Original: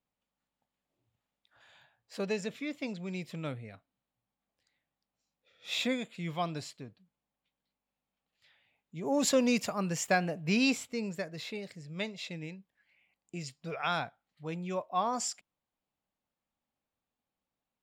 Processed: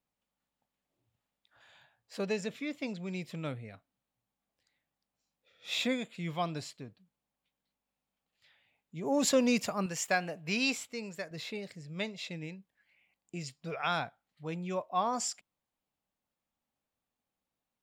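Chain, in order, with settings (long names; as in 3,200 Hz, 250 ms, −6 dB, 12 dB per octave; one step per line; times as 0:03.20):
0:09.86–0:11.31: low-shelf EQ 450 Hz −8.5 dB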